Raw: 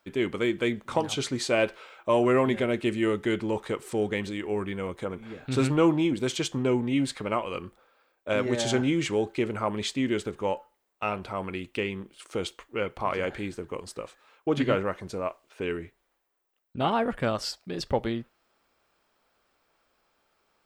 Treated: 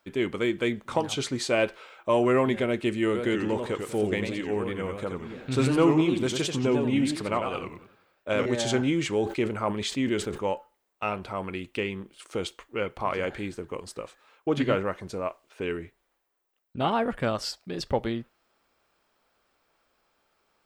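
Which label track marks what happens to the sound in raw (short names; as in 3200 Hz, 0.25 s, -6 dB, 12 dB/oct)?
3.050000	8.460000	warbling echo 91 ms, feedback 35%, depth 210 cents, level -5.5 dB
9.170000	10.460000	sustainer at most 110 dB/s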